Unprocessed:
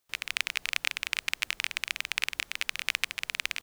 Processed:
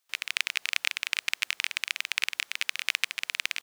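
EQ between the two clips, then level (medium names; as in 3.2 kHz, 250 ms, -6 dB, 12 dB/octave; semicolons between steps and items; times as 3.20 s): high-pass 1.3 kHz 6 dB/octave; treble shelf 8.3 kHz -3.5 dB; +3.0 dB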